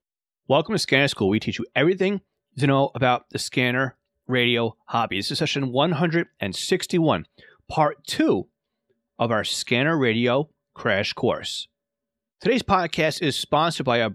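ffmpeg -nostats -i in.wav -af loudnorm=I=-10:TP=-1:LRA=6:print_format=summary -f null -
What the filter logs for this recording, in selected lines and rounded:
Input Integrated:    -22.7 LUFS
Input True Peak:      -5.5 dBTP
Input LRA:             1.5 LU
Input Threshold:     -33.0 LUFS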